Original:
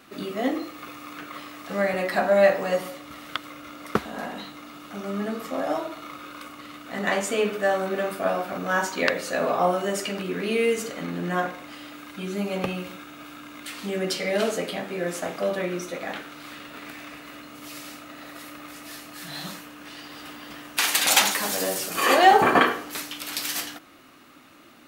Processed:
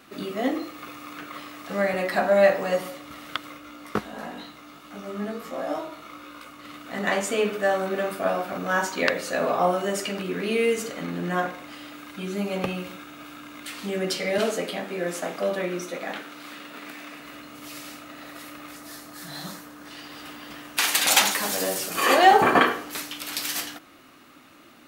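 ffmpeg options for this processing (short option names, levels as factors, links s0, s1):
-filter_complex "[0:a]asplit=3[s0][s1][s2];[s0]afade=t=out:st=3.57:d=0.02[s3];[s1]flanger=delay=16.5:depth=3.1:speed=1.6,afade=t=in:st=3.57:d=0.02,afade=t=out:st=6.63:d=0.02[s4];[s2]afade=t=in:st=6.63:d=0.02[s5];[s3][s4][s5]amix=inputs=3:normalize=0,asettb=1/sr,asplit=3[s6][s7][s8];[s6]atrim=end=14.384[s9];[s7]atrim=start=14.38:end=17.2,asetpts=PTS-STARTPTS,afade=t=in:d=0.004:c=qsin,afade=t=out:st=2.816:d=0.004:c=qsin,highpass=f=160:w=0.5412,highpass=f=160:w=1.3066[s10];[s8]atrim=start=17.196[s11];[s9][s10]acrossfade=d=0.004:c1=hsin:c2=qsin[s12];[s12][s11]acrossfade=d=0.004:c1=qsin:c2=hsin,asettb=1/sr,asplit=3[s13][s14][s15];[s13]atrim=end=18.764[s16];[s14]atrim=start=18.76:end=19.91,asetpts=PTS-STARTPTS,afade=t=in:d=0.004:c=qsin,afade=t=out:st=1.146:d=0.004:c=qsin,equalizer=f=2700:t=o:w=0.66:g=-8[s17];[s15]atrim=start=19.906[s18];[s16][s17]acrossfade=d=0.004:c1=hsin:c2=qsin[s19];[s19][s18]acrossfade=d=0.004:c1=qsin:c2=hsin"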